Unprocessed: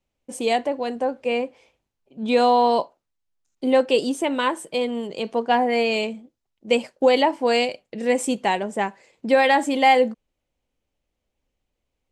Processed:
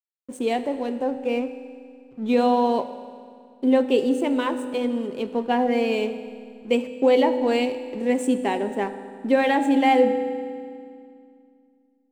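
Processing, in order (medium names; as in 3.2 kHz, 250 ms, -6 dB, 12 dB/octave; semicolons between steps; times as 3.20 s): graphic EQ with 31 bands 250 Hz +9 dB, 400 Hz +9 dB, 5 kHz -11 dB; hysteresis with a dead band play -36.5 dBFS; on a send: reverberation RT60 2.2 s, pre-delay 3 ms, DRR 9 dB; on the sum: trim -5 dB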